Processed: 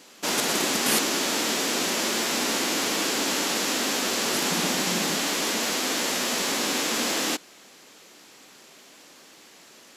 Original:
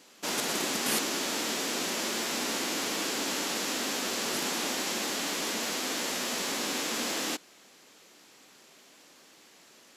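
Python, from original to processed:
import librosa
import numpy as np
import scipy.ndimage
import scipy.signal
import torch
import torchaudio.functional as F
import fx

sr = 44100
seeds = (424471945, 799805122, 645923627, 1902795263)

y = fx.peak_eq(x, sr, hz=170.0, db=15.0, octaves=0.38, at=(4.5, 5.18))
y = y * librosa.db_to_amplitude(6.0)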